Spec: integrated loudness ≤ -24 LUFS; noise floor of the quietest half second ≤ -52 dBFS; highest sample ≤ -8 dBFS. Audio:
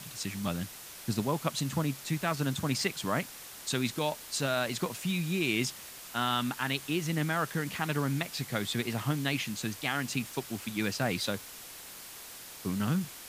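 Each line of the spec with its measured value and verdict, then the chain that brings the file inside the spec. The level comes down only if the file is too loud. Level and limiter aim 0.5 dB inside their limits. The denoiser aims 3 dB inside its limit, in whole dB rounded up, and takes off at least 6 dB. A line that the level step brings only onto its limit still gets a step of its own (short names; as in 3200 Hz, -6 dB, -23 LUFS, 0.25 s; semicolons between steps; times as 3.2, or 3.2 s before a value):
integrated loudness -32.0 LUFS: OK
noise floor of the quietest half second -47 dBFS: fail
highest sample -15.0 dBFS: OK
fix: denoiser 8 dB, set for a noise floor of -47 dBFS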